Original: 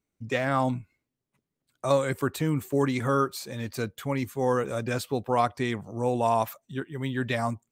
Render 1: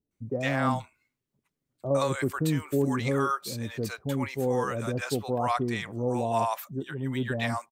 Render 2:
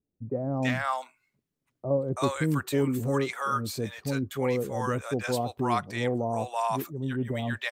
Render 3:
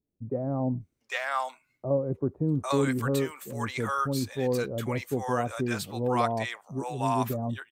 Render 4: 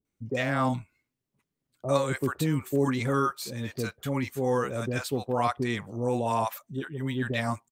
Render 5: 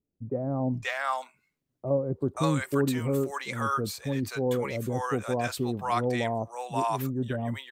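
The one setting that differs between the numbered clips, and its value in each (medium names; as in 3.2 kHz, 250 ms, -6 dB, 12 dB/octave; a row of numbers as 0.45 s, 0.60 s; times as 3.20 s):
bands offset in time, time: 110 ms, 330 ms, 800 ms, 50 ms, 530 ms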